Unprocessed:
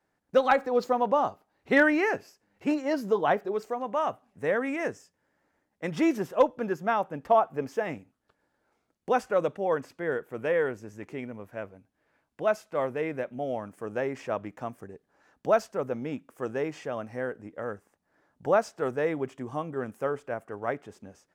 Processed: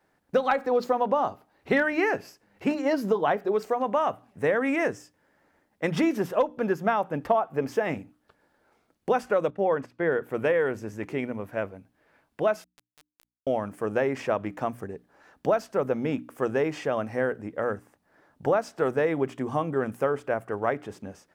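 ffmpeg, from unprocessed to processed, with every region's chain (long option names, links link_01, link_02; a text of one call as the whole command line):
ffmpeg -i in.wav -filter_complex "[0:a]asettb=1/sr,asplit=3[link_01][link_02][link_03];[link_01]atrim=end=9.504[link_04];[link_02]atrim=start=9.5:end=10.22,asetpts=PTS-STARTPTS,afade=type=in:duration=0.004:curve=qsin,afade=type=out:start_time=0.716:duration=0.004:curve=qsin,agate=range=-11dB:threshold=-47dB:ratio=16:release=100:detection=peak,lowpass=frequency=3600:poles=1[link_05];[link_03]atrim=start=10.216[link_06];[link_04][link_05]acrossfade=duration=0.004:curve1=hsin:curve2=qsin[link_07];[link_07][link_06]acrossfade=duration=0.004:curve1=qsin:curve2=hsin,asettb=1/sr,asplit=3[link_08][link_09][link_10];[link_08]atrim=end=12.644[link_11];[link_09]atrim=start=12.64:end=13.47,asetpts=PTS-STARTPTS,afade=type=in:duration=0.004:curve=qsin,afade=type=out:start_time=0.826:duration=0.004:curve=qsin,bandpass=frequency=4000:width_type=q:width=8.1,acrusher=bits=5:dc=4:mix=0:aa=0.000001[link_12];[link_10]atrim=start=13.466[link_13];[link_11][link_12]acrossfade=duration=0.004:curve1=hsin:curve2=qsin[link_14];[link_14][link_13]acrossfade=duration=0.004:curve1=qsin:curve2=hsin,acompressor=threshold=-28dB:ratio=5,equalizer=frequency=6900:width_type=o:width=0.69:gain=-3.5,bandreject=frequency=60:width_type=h:width=6,bandreject=frequency=120:width_type=h:width=6,bandreject=frequency=180:width_type=h:width=6,bandreject=frequency=240:width_type=h:width=6,bandreject=frequency=300:width_type=h:width=6,volume=7.5dB" out.wav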